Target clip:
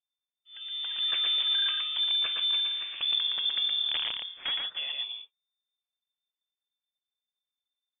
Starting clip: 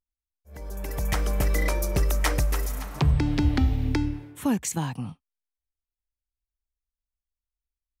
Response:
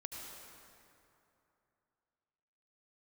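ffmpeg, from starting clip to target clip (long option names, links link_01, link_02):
-filter_complex "[0:a]asettb=1/sr,asplit=3[link_01][link_02][link_03];[link_01]atrim=end=1.994[link_04];[link_02]atrim=start=1.99:end=2.75,asetpts=PTS-STARTPTS,afade=type=in:duration=0.004:curve=qsin,afade=type=out:start_time=0.756:duration=0.004:curve=qsin,bandreject=frequency=1700:width=5.4[link_05];[link_03]atrim=start=2.746[link_06];[link_04][link_05]acrossfade=duration=0.004:curve1=hsin:curve2=qsin[link_07];[link_07][link_06]acrossfade=duration=0.004:curve1=qsin:curve2=hsin,alimiter=limit=-18dB:level=0:latency=1:release=191,asplit=3[link_08][link_09][link_10];[link_08]afade=type=out:start_time=3.88:duration=0.02[link_11];[link_09]aeval=exprs='(mod(10*val(0)+1,2)-1)/10':channel_layout=same,afade=type=in:start_time=3.88:duration=0.02,afade=type=out:start_time=4.5:duration=0.02[link_12];[link_10]afade=type=in:start_time=4.5:duration=0.02[link_13];[link_11][link_12][link_13]amix=inputs=3:normalize=0,aecho=1:1:117:0.668,lowpass=frequency=3100:width_type=q:width=0.5098,lowpass=frequency=3100:width_type=q:width=0.6013,lowpass=frequency=3100:width_type=q:width=0.9,lowpass=frequency=3100:width_type=q:width=2.563,afreqshift=-3600,volume=-4.5dB"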